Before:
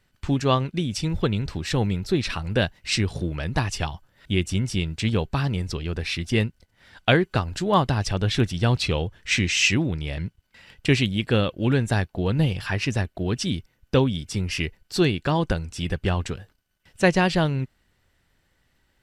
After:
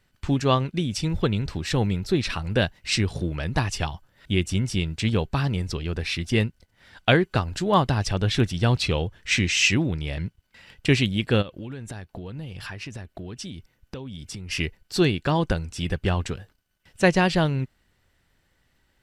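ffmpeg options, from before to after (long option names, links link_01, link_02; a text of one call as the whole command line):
ffmpeg -i in.wav -filter_complex "[0:a]asplit=3[link_01][link_02][link_03];[link_01]afade=type=out:start_time=11.41:duration=0.02[link_04];[link_02]acompressor=threshold=-32dB:ratio=8:attack=3.2:release=140:knee=1:detection=peak,afade=type=in:start_time=11.41:duration=0.02,afade=type=out:start_time=14.5:duration=0.02[link_05];[link_03]afade=type=in:start_time=14.5:duration=0.02[link_06];[link_04][link_05][link_06]amix=inputs=3:normalize=0" out.wav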